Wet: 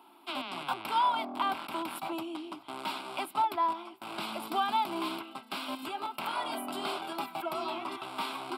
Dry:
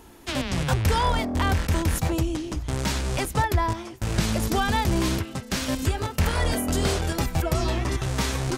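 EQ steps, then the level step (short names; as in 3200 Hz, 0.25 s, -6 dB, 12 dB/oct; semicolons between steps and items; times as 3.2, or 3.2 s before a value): HPF 330 Hz 24 dB/oct; high shelf 3300 Hz -10.5 dB; fixed phaser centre 1800 Hz, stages 6; 0.0 dB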